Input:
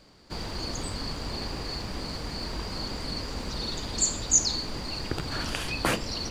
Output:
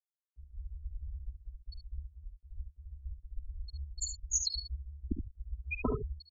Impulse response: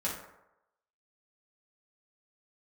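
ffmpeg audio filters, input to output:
-filter_complex "[0:a]afftfilt=real='re*gte(hypot(re,im),0.224)':imag='im*gte(hypot(re,im),0.224)':win_size=1024:overlap=0.75,afreqshift=-80,highshelf=f=4.7k:t=q:w=1.5:g=-9,asplit=2[a][b];[b]aecho=0:1:52|71:0.188|0.422[c];[a][c]amix=inputs=2:normalize=0,volume=1dB"

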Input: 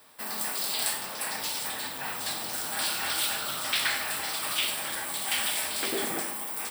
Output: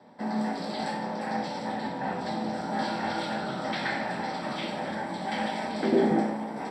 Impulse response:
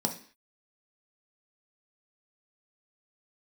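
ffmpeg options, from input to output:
-filter_complex "[0:a]lowpass=1.8k,equalizer=f=1.1k:t=o:w=0.51:g=-9.5[a];[1:a]atrim=start_sample=2205[b];[a][b]afir=irnorm=-1:irlink=0"

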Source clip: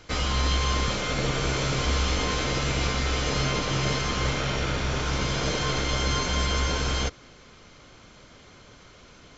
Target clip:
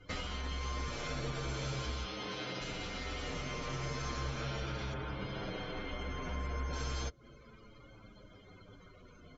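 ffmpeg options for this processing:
-filter_complex "[0:a]acompressor=threshold=-33dB:ratio=6,asettb=1/sr,asplit=3[a][b][c];[a]atrim=end=2.044[d];[b]atrim=start=2.04:end=2.61,asetpts=PTS-STARTPTS,afade=t=in:d=0.004:c=qsin,afade=t=out:st=0.566:d=0.004:c=qsin,highpass=130,lowpass=5.6k[e];[c]atrim=start=2.606[f];[d][e]acrossfade=d=0.004:c1=hsin:c2=qsin[g];[g][f]acrossfade=d=0.004:c1=qsin:c2=hsin,asettb=1/sr,asplit=3[h][i][j];[h]atrim=end=4.934[k];[i]atrim=start=4.93:end=6.73,asetpts=PTS-STARTPTS,afade=t=in:d=0.004:c=qsin,afade=t=out:st=1.796:d=0.004:c=qsin,aemphasis=mode=reproduction:type=75fm[l];[j]atrim=start=6.726[m];[k][l]acrossfade=d=0.004:c1=hsin:c2=qsin[n];[n][m]acrossfade=d=0.004:c1=qsin:c2=hsin,afftdn=nr=20:nf=-50,asplit=2[o][p];[p]adelay=7.6,afreqshift=-0.35[q];[o][q]amix=inputs=2:normalize=1"

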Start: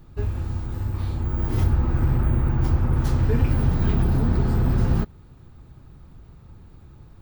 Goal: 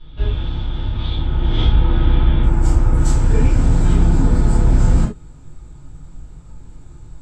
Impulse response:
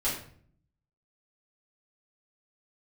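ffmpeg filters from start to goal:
-filter_complex "[0:a]asetnsamples=n=441:p=0,asendcmd='2.43 lowpass f 7800',lowpass=f=3.4k:t=q:w=13[a];[1:a]atrim=start_sample=2205,atrim=end_sample=4410,asetrate=48510,aresample=44100[b];[a][b]afir=irnorm=-1:irlink=0,volume=-3dB"

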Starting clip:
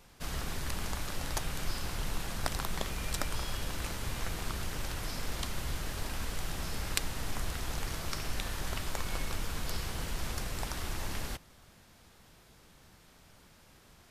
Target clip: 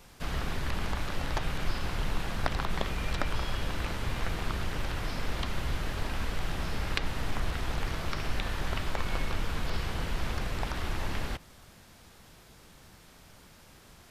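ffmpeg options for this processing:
-filter_complex "[0:a]acrossover=split=4100[a][b];[b]acompressor=threshold=-57dB:ratio=4:attack=1:release=60[c];[a][c]amix=inputs=2:normalize=0,volume=4.5dB"

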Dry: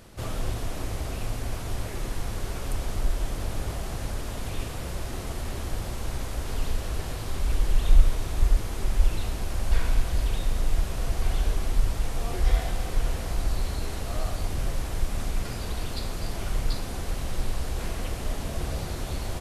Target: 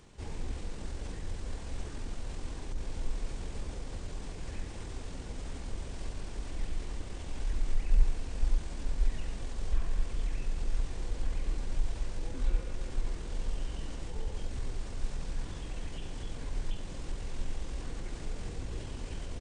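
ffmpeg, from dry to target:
-filter_complex "[0:a]acrossover=split=520[a][b];[b]alimiter=level_in=9.5dB:limit=-24dB:level=0:latency=1:release=133,volume=-9.5dB[c];[a][c]amix=inputs=2:normalize=0,asetrate=31183,aresample=44100,atempo=1.41421,bandreject=f=1.3k:w=22,volume=-6.5dB"

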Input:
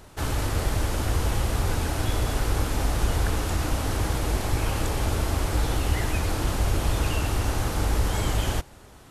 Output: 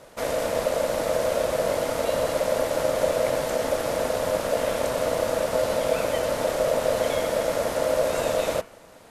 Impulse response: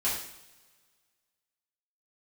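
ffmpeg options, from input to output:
-af "bandreject=f=92.85:t=h:w=4,bandreject=f=185.7:t=h:w=4,bandreject=f=278.55:t=h:w=4,bandreject=f=371.4:t=h:w=4,bandreject=f=464.25:t=h:w=4,bandreject=f=557.1:t=h:w=4,bandreject=f=649.95:t=h:w=4,bandreject=f=742.8:t=h:w=4,bandreject=f=835.65:t=h:w=4,bandreject=f=928.5:t=h:w=4,bandreject=f=1.02135k:t=h:w=4,bandreject=f=1.1142k:t=h:w=4,bandreject=f=1.20705k:t=h:w=4,bandreject=f=1.2999k:t=h:w=4,bandreject=f=1.39275k:t=h:w=4,bandreject=f=1.4856k:t=h:w=4,bandreject=f=1.57845k:t=h:w=4,bandreject=f=1.6713k:t=h:w=4,bandreject=f=1.76415k:t=h:w=4,bandreject=f=1.857k:t=h:w=4,bandreject=f=1.94985k:t=h:w=4,bandreject=f=2.0427k:t=h:w=4,bandreject=f=2.13555k:t=h:w=4,bandreject=f=2.2284k:t=h:w=4,bandreject=f=2.32125k:t=h:w=4,bandreject=f=2.4141k:t=h:w=4,bandreject=f=2.50695k:t=h:w=4,bandreject=f=2.5998k:t=h:w=4,aeval=exprs='val(0)*sin(2*PI*570*n/s)':c=same,volume=2.5dB"

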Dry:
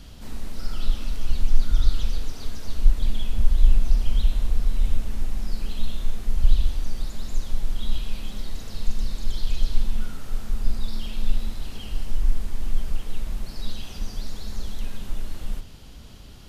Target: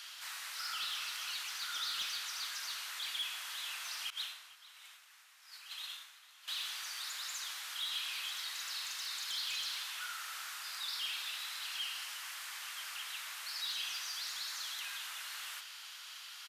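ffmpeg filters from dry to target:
-filter_complex "[0:a]highpass=f=1.3k:w=0.5412,highpass=f=1.3k:w=1.3066,asettb=1/sr,asplit=3[a][b][c];[a]atrim=end=4.104[d];[b]atrim=start=4.1:end=6.48,asetpts=PTS-STARTPTS,afade=t=in:d=0.004:c=qsin,afade=t=out:st=2.376:d=0.004:c=qsin,agate=range=-33dB:threshold=-38dB:ratio=3:detection=peak[e];[c]atrim=start=6.476[f];[d][e]acrossfade=d=0.004:c1=hsin:c2=qsin[g];[g][f]acrossfade=d=0.004:c1=qsin:c2=hsin,highshelf=f=2.7k:g=-4.5,asoftclip=type=tanh:threshold=-39dB,asplit=2[h][i];[i]adelay=449,volume=-15dB,highshelf=f=4k:g=-10.1[j];[h][j]amix=inputs=2:normalize=0,volume=8.5dB"

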